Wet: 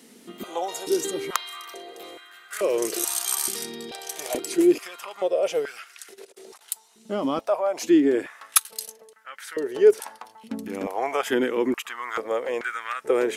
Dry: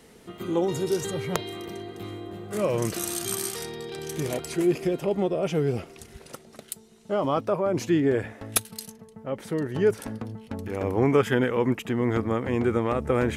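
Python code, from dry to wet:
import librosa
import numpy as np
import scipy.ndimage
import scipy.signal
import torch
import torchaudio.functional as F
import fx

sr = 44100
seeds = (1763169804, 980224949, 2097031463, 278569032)

y = fx.high_shelf(x, sr, hz=2100.0, db=11.5)
y = fx.over_compress(y, sr, threshold_db=-46.0, ratio=-0.5, at=(6.05, 6.61))
y = fx.filter_held_highpass(y, sr, hz=2.3, low_hz=240.0, high_hz=1500.0)
y = F.gain(torch.from_numpy(y), -5.5).numpy()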